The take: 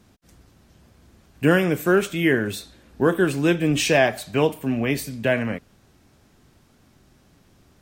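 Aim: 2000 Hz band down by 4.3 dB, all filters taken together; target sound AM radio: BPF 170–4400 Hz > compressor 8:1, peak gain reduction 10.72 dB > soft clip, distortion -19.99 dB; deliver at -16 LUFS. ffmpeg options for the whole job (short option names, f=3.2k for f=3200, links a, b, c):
-af "highpass=170,lowpass=4.4k,equalizer=f=2k:t=o:g=-5.5,acompressor=threshold=-23dB:ratio=8,asoftclip=threshold=-18.5dB,volume=14.5dB"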